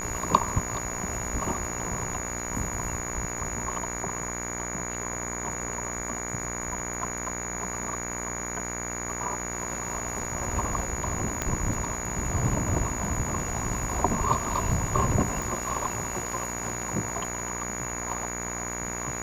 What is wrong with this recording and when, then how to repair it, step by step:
mains buzz 60 Hz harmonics 39 −36 dBFS
whistle 6,800 Hz −34 dBFS
0:11.42: click −12 dBFS
0:15.42: click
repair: click removal
hum removal 60 Hz, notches 39
notch filter 6,800 Hz, Q 30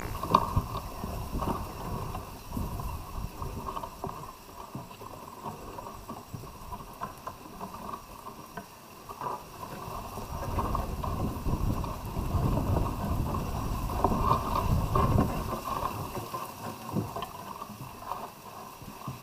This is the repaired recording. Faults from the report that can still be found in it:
0:11.42: click

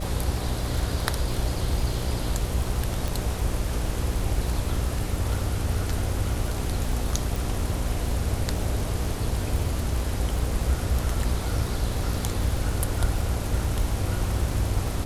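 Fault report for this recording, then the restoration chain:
mains buzz 60 Hz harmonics 10 −31 dBFS
surface crackle 36 per second −29 dBFS
0:03.08: click
0:07.36: click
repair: click removal
hum removal 60 Hz, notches 10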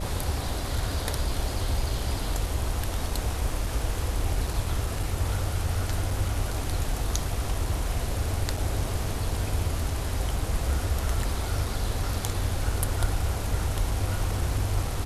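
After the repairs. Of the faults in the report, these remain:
none of them is left

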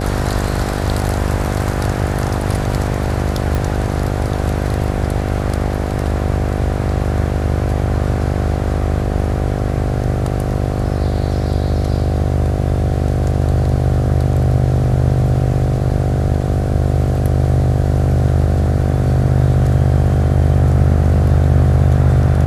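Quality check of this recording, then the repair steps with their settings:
mains buzz 50 Hz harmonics 15 −20 dBFS
0:03.55: click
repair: click removal
hum removal 50 Hz, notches 15

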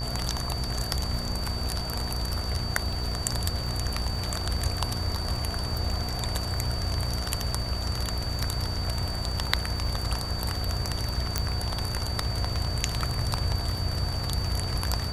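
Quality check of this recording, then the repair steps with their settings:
mains buzz 60 Hz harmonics 30 −33 dBFS
surface crackle 48 per second −37 dBFS
whistle 4,600 Hz −35 dBFS
0:11.38: click −9 dBFS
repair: click removal
notch filter 4,600 Hz, Q 30
hum removal 60 Hz, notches 30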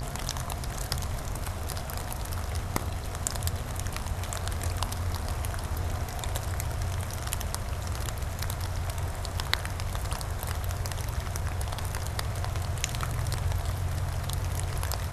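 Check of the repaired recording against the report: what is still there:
none of them is left

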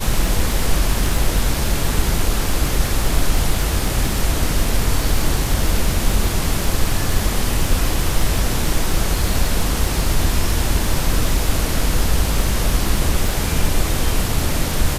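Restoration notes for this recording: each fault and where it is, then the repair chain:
surface crackle 36 per second −21 dBFS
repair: click removal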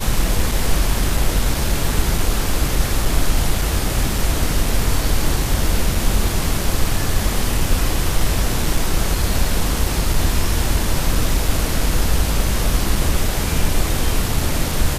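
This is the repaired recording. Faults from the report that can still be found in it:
none of them is left

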